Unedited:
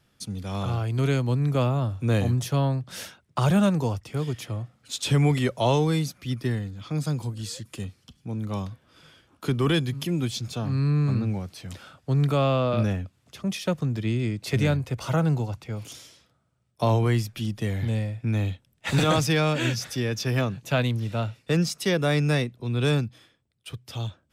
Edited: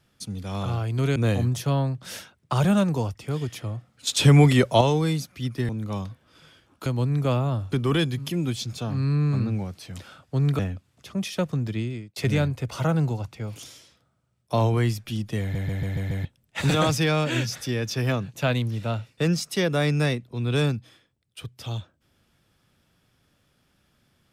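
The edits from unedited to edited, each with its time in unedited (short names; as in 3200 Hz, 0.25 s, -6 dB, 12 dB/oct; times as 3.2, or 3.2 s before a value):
1.16–2.02 move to 9.47
4.93–5.67 gain +6 dB
6.55–8.3 cut
12.34–12.88 cut
13.99–14.45 fade out
17.7 stutter in place 0.14 s, 6 plays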